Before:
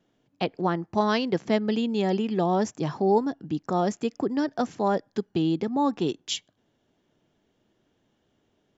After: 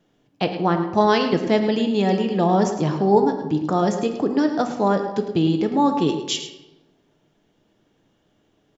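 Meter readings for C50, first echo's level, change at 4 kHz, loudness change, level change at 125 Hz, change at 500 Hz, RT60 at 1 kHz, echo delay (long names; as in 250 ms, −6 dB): 7.0 dB, −11.5 dB, +5.5 dB, +6.0 dB, +7.0 dB, +6.0 dB, 1.1 s, 107 ms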